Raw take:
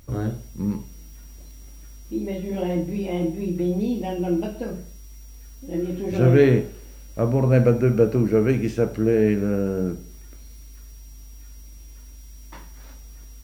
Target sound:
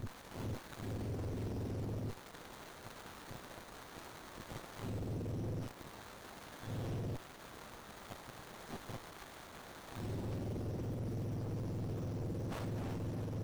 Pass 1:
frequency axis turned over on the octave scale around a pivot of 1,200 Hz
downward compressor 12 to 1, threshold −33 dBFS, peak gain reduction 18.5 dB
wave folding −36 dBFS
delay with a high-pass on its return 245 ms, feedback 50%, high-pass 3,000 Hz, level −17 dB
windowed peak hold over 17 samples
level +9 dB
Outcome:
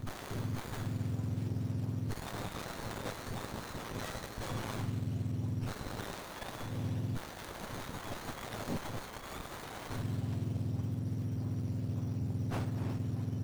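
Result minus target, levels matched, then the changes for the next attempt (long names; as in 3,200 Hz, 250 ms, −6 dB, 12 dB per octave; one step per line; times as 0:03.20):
wave folding: distortion −13 dB
change: wave folding −43.5 dBFS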